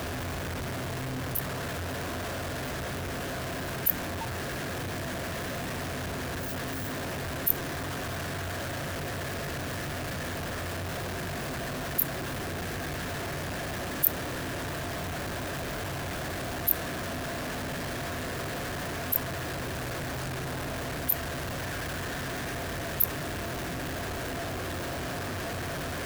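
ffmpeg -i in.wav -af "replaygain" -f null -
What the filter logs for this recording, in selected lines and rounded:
track_gain = +19.3 dB
track_peak = 0.437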